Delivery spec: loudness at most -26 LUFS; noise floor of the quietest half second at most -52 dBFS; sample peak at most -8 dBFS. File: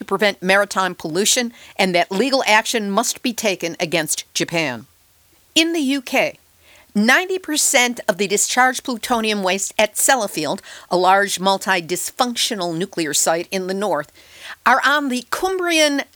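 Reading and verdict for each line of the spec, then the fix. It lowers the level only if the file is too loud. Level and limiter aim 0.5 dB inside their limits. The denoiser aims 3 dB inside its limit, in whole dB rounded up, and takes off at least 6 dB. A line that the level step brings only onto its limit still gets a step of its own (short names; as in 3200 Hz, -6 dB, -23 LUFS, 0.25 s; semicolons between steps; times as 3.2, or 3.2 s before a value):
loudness -18.0 LUFS: fail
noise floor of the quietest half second -55 dBFS: OK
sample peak -1.5 dBFS: fail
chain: gain -8.5 dB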